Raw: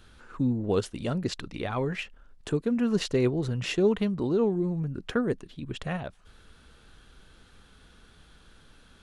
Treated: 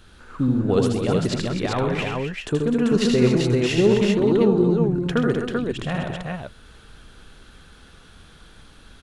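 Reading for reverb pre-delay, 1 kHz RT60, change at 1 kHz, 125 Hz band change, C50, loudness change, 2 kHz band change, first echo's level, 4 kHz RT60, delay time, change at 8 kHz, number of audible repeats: none, none, +8.0 dB, +8.0 dB, none, +7.5 dB, +8.0 dB, -4.0 dB, none, 79 ms, +8.0 dB, 5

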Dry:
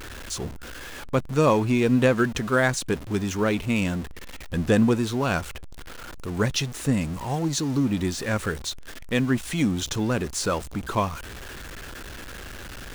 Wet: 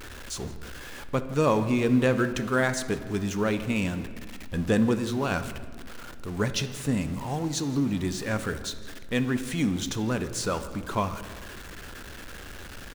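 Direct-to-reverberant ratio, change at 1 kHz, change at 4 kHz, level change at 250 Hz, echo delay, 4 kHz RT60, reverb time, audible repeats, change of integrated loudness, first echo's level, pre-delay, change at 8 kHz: 9.5 dB, -3.0 dB, -3.0 dB, -2.5 dB, 0.166 s, 1.0 s, 1.7 s, 2, -3.0 dB, -21.5 dB, 4 ms, -3.5 dB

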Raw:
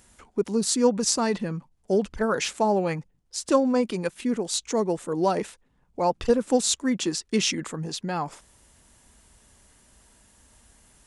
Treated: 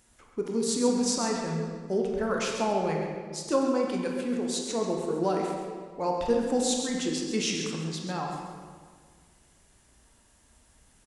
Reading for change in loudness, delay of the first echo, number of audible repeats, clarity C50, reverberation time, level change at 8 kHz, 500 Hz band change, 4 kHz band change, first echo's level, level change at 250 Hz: -3.5 dB, 0.134 s, 1, 1.0 dB, 1.8 s, -4.5 dB, -3.0 dB, -4.0 dB, -8.5 dB, -3.0 dB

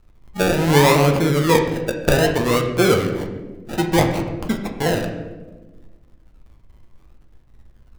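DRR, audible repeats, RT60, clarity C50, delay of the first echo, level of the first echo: 2.0 dB, none, 1.2 s, 6.5 dB, none, none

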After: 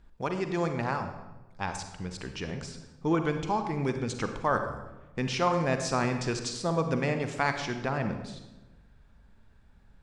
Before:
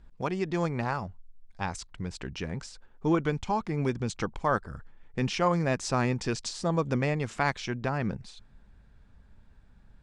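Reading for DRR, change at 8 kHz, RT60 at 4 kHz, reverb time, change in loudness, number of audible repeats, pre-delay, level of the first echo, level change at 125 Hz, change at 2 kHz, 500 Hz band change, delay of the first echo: 6.5 dB, +0.5 dB, 0.75 s, 1.1 s, -0.5 dB, none, 38 ms, none, -2.0 dB, +0.5 dB, +0.5 dB, none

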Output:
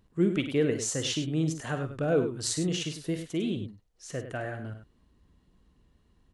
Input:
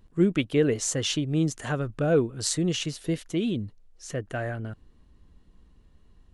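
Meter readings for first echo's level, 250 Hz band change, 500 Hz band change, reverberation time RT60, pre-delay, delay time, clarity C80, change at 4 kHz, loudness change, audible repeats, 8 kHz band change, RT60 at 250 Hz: -12.0 dB, -3.0 dB, -3.0 dB, none, none, 46 ms, none, -2.5 dB, -3.0 dB, 2, -2.5 dB, none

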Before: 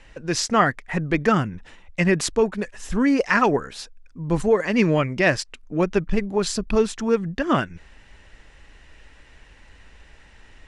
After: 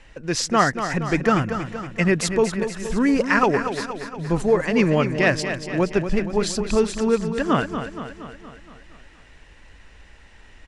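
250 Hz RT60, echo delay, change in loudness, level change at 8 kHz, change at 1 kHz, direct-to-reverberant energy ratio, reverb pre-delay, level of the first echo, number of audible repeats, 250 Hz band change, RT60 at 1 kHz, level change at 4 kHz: none, 0.235 s, +0.5 dB, +0.5 dB, +1.0 dB, none, none, -9.0 dB, 6, +1.0 dB, none, +1.0 dB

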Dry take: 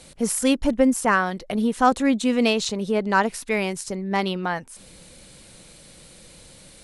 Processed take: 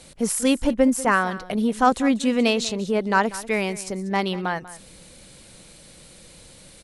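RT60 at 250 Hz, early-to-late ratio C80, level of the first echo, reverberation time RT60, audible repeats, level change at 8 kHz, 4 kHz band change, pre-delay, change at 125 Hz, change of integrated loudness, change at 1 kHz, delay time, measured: none, none, -17.0 dB, none, 1, 0.0 dB, 0.0 dB, none, 0.0 dB, 0.0 dB, 0.0 dB, 0.191 s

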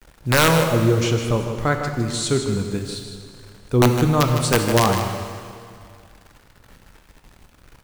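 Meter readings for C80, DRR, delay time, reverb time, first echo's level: 5.0 dB, 3.5 dB, 0.156 s, 2.2 s, -9.0 dB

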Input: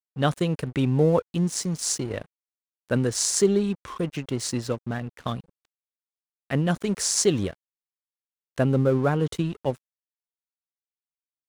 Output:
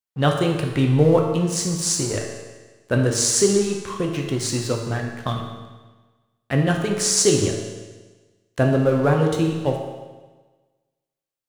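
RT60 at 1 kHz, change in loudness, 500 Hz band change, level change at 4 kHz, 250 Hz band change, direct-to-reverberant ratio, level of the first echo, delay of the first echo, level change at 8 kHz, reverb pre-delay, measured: 1.3 s, +4.5 dB, +4.5 dB, +5.5 dB, +3.5 dB, 1.0 dB, none, none, +5.5 dB, 9 ms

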